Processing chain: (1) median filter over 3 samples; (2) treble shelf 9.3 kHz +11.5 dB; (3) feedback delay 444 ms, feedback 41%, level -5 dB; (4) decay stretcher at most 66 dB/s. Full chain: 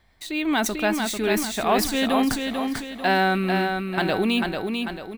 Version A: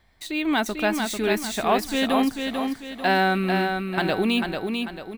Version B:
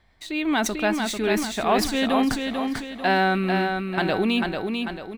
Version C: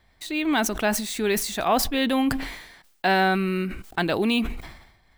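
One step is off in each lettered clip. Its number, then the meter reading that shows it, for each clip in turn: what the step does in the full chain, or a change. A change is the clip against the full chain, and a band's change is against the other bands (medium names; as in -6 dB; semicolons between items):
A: 4, 8 kHz band -4.0 dB; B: 2, 8 kHz band -2.0 dB; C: 3, momentary loudness spread change +3 LU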